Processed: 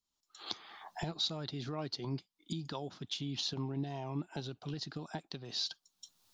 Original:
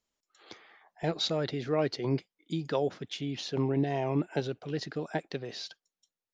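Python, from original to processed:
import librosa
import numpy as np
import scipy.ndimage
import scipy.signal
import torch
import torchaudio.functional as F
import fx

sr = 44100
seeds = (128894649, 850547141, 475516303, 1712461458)

y = fx.recorder_agc(x, sr, target_db=-22.5, rise_db_per_s=37.0, max_gain_db=30)
y = fx.graphic_eq(y, sr, hz=(500, 1000, 2000, 4000), db=(-11, 4, -10, 6))
y = F.gain(torch.from_numpy(y), -6.5).numpy()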